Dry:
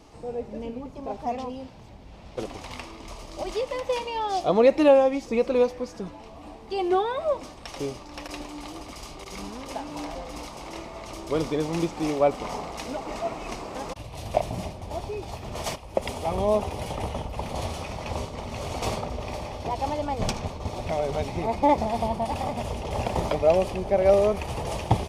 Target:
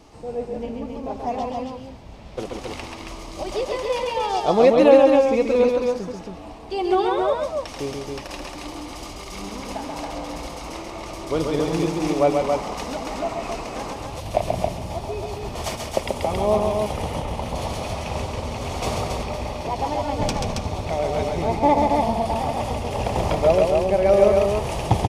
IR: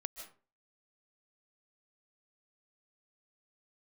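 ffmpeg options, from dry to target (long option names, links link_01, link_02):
-af "aecho=1:1:134|274:0.631|0.631,volume=2dB"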